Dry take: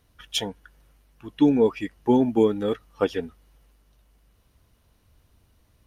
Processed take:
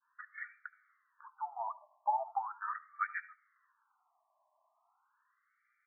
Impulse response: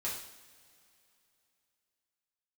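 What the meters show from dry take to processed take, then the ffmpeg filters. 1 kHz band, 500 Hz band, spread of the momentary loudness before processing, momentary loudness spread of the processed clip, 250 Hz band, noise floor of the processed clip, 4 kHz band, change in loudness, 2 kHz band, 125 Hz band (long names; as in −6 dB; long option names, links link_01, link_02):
−1.5 dB, −27.5 dB, 12 LU, 18 LU, below −40 dB, −79 dBFS, below −40 dB, −16.0 dB, −2.0 dB, below −40 dB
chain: -filter_complex "[0:a]adynamicequalizer=threshold=0.0112:dfrequency=1200:dqfactor=0.83:tfrequency=1200:tqfactor=0.83:attack=5:release=100:ratio=0.375:range=2:mode=boostabove:tftype=bell,acompressor=threshold=-21dB:ratio=4,aecho=1:1:73:0.0708,asplit=2[link_01][link_02];[1:a]atrim=start_sample=2205,atrim=end_sample=3969,adelay=79[link_03];[link_02][link_03]afir=irnorm=-1:irlink=0,volume=-23dB[link_04];[link_01][link_04]amix=inputs=2:normalize=0,afftfilt=real='re*between(b*sr/1024,820*pow(1700/820,0.5+0.5*sin(2*PI*0.39*pts/sr))/1.41,820*pow(1700/820,0.5+0.5*sin(2*PI*0.39*pts/sr))*1.41)':imag='im*between(b*sr/1024,820*pow(1700/820,0.5+0.5*sin(2*PI*0.39*pts/sr))/1.41,820*pow(1700/820,0.5+0.5*sin(2*PI*0.39*pts/sr))*1.41)':win_size=1024:overlap=0.75,volume=1dB"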